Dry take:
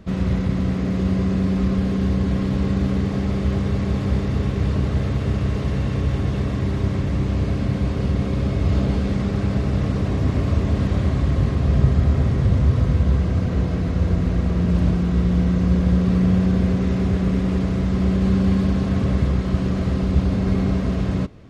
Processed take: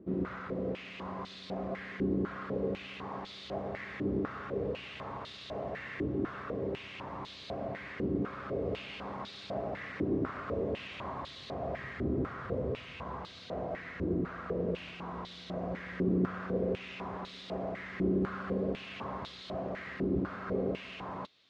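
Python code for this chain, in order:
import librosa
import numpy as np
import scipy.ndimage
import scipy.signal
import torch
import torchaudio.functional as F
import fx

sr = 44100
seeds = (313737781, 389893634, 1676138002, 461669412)

y = fx.filter_held_bandpass(x, sr, hz=4.0, low_hz=340.0, high_hz=3800.0)
y = y * librosa.db_to_amplitude(2.5)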